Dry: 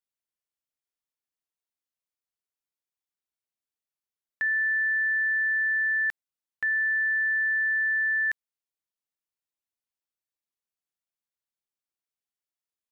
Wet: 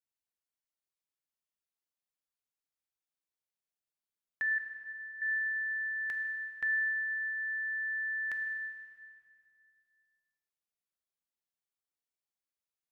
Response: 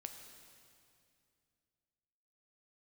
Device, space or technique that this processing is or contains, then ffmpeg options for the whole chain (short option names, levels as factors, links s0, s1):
stairwell: -filter_complex "[0:a]asettb=1/sr,asplit=3[s0][s1][s2];[s0]atrim=end=4.584[s3];[s1]atrim=start=4.58:end=5.22,asetpts=PTS-STARTPTS,afade=t=in:d=0.004:c=qsin,afade=t=out:st=0.636:d=0.004:c=qsin,agate=range=0.0224:threshold=0.112:ratio=3:detection=peak[s4];[s2]atrim=start=5.216[s5];[s3][s4]acrossfade=d=0.004:c1=hsin:c2=qsin[s6];[s6][s5]acrossfade=d=0.004:c1=qsin:c2=hsin[s7];[1:a]atrim=start_sample=2205[s8];[s7][s8]afir=irnorm=-1:irlink=0"